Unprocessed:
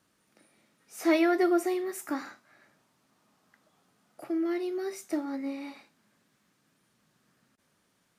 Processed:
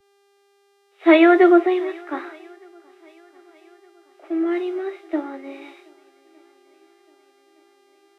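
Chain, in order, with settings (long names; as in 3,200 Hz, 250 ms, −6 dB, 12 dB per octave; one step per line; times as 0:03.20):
Butterworth high-pass 300 Hz 48 dB per octave
noise gate −58 dBFS, range −14 dB
Butterworth low-pass 3,800 Hz 96 dB per octave
hum with harmonics 400 Hz, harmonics 34, −54 dBFS −8 dB per octave
feedback echo with a long and a short gap by turns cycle 1,215 ms, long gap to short 1.5 to 1, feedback 58%, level −19 dB
multiband upward and downward expander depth 70%
level +6 dB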